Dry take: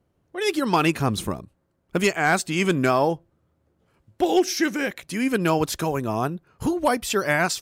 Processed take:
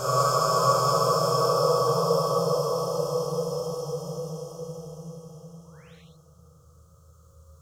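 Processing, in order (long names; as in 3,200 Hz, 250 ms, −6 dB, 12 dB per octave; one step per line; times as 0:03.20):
drawn EQ curve 160 Hz 0 dB, 280 Hz −29 dB, 480 Hz −2 dB, 870 Hz −16 dB, 1,200 Hz +6 dB, 2,000 Hz −28 dB, 2,900 Hz −11 dB, 6,700 Hz +15 dB, 10,000 Hz +7 dB
upward compression, threshold −27 dBFS
extreme stretch with random phases 15×, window 0.50 s, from 0:02.96
feedback delay with all-pass diffusion 489 ms, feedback 43%, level −6 dB
sound drawn into the spectrogram rise, 0:05.64–0:05.96, 870–4,400 Hz −59 dBFS
reverb whose tail is shaped and stops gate 230 ms flat, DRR −5.5 dB
level −5 dB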